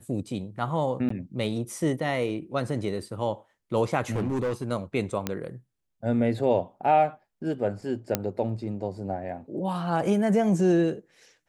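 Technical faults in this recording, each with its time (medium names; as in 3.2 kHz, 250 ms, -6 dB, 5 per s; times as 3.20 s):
1.09–1.10 s: dropout 14 ms
4.11–4.72 s: clipped -23.5 dBFS
5.27 s: pop -12 dBFS
8.15 s: pop -7 dBFS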